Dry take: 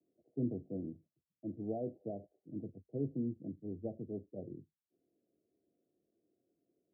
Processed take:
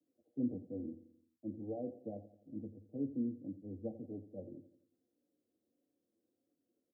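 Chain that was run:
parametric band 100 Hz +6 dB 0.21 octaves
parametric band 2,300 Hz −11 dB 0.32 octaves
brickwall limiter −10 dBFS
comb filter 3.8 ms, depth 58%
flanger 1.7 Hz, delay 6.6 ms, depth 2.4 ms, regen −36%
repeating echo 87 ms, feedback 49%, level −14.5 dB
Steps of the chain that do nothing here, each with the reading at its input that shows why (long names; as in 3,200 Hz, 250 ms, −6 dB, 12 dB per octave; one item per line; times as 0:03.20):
parametric band 2,300 Hz: nothing at its input above 760 Hz
brickwall limiter −10 dBFS: peak of its input −25.0 dBFS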